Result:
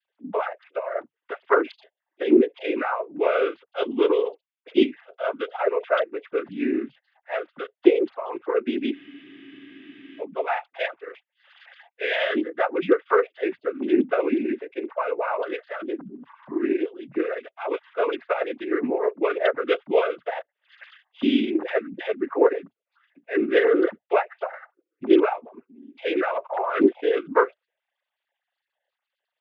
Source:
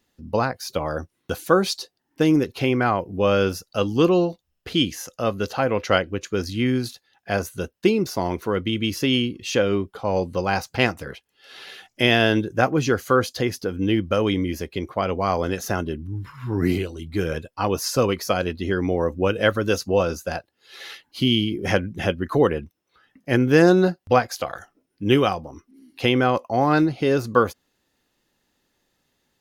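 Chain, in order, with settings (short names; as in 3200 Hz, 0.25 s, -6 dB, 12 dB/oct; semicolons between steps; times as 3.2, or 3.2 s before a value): sine-wave speech; noise vocoder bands 16; spectral freeze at 8.97, 1.24 s; gain -2 dB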